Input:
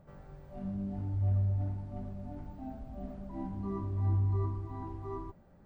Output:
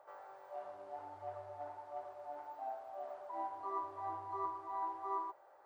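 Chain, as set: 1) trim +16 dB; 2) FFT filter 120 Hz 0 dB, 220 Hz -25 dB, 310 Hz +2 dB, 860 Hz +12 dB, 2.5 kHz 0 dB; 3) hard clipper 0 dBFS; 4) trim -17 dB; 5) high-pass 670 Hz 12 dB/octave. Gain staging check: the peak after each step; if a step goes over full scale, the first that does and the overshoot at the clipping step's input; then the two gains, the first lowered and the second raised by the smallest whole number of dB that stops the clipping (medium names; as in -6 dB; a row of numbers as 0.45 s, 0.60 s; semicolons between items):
-5.5 dBFS, -4.0 dBFS, -4.0 dBFS, -21.0 dBFS, -27.5 dBFS; nothing clips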